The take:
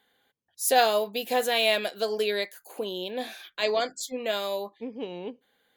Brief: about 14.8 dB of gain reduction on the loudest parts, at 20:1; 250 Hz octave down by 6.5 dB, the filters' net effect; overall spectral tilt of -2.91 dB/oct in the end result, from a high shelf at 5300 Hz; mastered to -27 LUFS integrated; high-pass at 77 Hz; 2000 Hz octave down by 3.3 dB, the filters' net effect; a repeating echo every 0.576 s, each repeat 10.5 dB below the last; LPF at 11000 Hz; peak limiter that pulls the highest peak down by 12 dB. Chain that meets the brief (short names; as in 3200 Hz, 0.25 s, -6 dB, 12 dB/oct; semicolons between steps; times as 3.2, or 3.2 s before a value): HPF 77 Hz; LPF 11000 Hz; bell 250 Hz -8 dB; bell 2000 Hz -5 dB; high shelf 5300 Hz +4 dB; compressor 20:1, threshold -31 dBFS; limiter -31.5 dBFS; feedback echo 0.576 s, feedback 30%, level -10.5 dB; gain +14 dB